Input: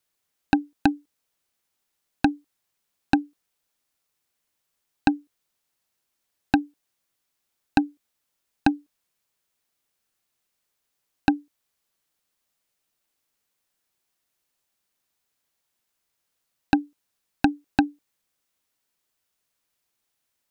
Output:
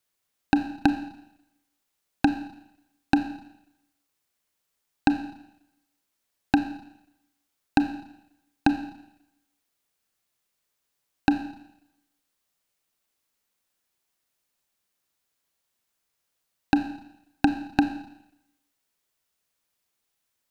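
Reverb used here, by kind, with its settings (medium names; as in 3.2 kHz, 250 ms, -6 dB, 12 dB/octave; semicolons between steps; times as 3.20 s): Schroeder reverb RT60 0.85 s, combs from 28 ms, DRR 9 dB; trim -1 dB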